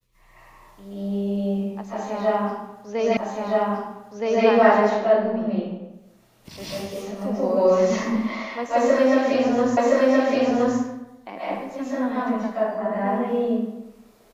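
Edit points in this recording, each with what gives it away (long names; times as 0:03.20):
0:03.17: the same again, the last 1.27 s
0:09.77: the same again, the last 1.02 s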